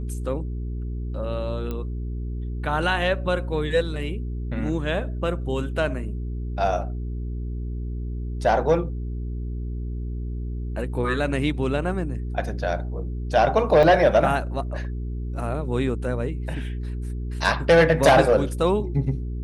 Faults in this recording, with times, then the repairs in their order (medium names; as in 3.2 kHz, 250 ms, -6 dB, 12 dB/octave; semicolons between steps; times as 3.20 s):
hum 60 Hz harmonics 7 -29 dBFS
1.71 s: pop -18 dBFS
13.83 s: dropout 3.5 ms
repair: de-click; de-hum 60 Hz, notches 7; interpolate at 13.83 s, 3.5 ms